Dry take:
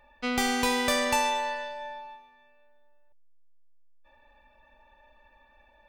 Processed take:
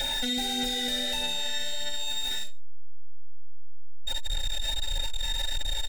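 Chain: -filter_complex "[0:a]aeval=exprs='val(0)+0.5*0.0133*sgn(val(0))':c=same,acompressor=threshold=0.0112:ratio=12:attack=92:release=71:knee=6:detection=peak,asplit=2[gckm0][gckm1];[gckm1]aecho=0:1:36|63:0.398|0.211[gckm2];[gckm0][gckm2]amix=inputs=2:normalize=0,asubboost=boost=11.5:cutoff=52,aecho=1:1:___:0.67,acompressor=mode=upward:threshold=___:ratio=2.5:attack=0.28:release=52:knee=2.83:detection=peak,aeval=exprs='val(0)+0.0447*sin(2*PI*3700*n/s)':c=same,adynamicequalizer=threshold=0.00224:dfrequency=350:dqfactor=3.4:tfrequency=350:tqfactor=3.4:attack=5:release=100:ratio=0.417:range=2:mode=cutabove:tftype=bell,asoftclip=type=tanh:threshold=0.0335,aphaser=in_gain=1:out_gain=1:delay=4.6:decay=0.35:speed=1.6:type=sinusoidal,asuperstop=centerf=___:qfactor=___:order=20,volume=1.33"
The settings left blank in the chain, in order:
7.5, 0.0794, 1100, 2.8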